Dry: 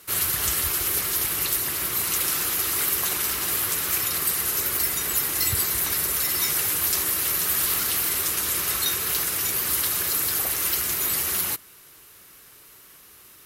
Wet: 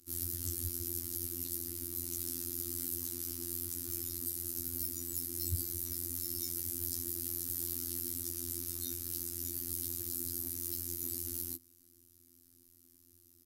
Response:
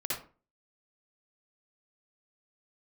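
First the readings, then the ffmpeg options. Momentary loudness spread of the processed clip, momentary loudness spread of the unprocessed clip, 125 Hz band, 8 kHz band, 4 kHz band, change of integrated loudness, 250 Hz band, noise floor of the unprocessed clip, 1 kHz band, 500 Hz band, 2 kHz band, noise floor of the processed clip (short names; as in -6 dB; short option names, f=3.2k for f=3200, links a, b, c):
2 LU, 2 LU, -6.0 dB, -15.0 dB, -19.5 dB, -14.5 dB, -6.0 dB, -50 dBFS, under -30 dB, -14.0 dB, -31.0 dB, -64 dBFS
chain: -af "firequalizer=gain_entry='entry(130,0);entry(200,-24);entry(290,12);entry(440,-27);entry(2700,-24);entry(5000,-10);entry(13000,-8)':delay=0.05:min_phase=1,afftfilt=real='hypot(re,im)*cos(PI*b)':imag='0':win_size=2048:overlap=0.75,volume=-2.5dB"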